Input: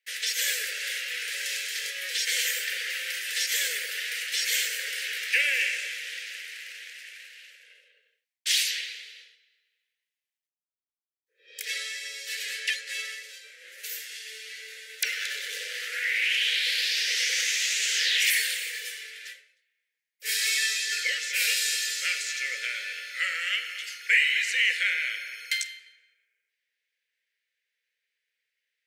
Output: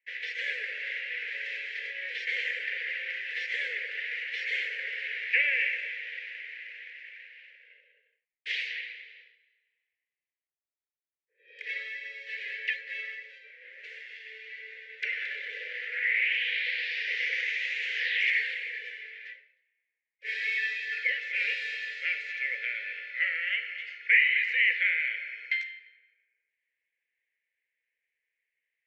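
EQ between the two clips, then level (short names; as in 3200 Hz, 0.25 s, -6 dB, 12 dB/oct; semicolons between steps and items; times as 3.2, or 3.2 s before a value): ladder low-pass 2400 Hz, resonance 50%; fixed phaser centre 470 Hz, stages 4; +7.5 dB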